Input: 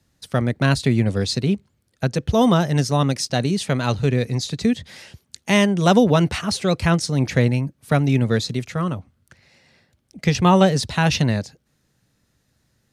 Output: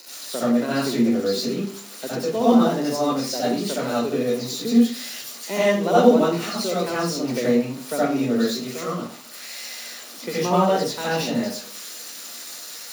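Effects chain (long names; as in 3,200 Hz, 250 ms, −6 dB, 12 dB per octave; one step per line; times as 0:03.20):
spike at every zero crossing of −15 dBFS
high-pass filter 210 Hz 24 dB per octave
high-shelf EQ 4,500 Hz −6.5 dB
convolution reverb RT60 0.40 s, pre-delay 63 ms, DRR −7.5 dB
level −15.5 dB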